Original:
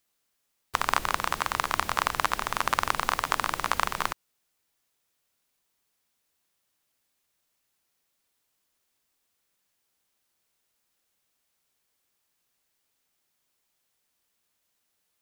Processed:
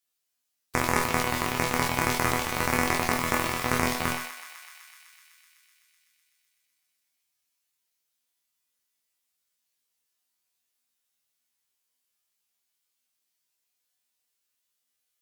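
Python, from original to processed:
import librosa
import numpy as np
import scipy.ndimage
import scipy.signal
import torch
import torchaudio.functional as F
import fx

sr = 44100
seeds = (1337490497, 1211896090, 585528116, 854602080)

y = fx.high_shelf(x, sr, hz=2000.0, db=8.5)
y = fx.cheby_harmonics(y, sr, harmonics=(8,), levels_db=(-9,), full_scale_db=4.0)
y = fx.transient(y, sr, attack_db=4, sustain_db=8)
y = fx.resonator_bank(y, sr, root=40, chord='fifth', decay_s=0.33)
y = fx.echo_thinned(y, sr, ms=126, feedback_pct=83, hz=720.0, wet_db=-11.5)
y = fx.sustainer(y, sr, db_per_s=62.0)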